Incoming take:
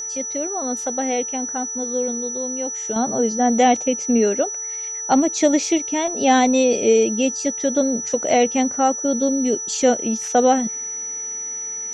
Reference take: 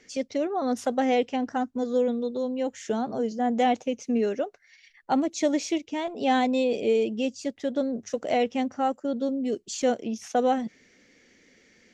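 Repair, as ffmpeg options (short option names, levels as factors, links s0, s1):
-af "bandreject=f=438:t=h:w=4,bandreject=f=876:t=h:w=4,bandreject=f=1314:t=h:w=4,bandreject=f=1752:t=h:w=4,bandreject=f=5900:w=30,asetnsamples=n=441:p=0,asendcmd='2.96 volume volume -7.5dB',volume=1"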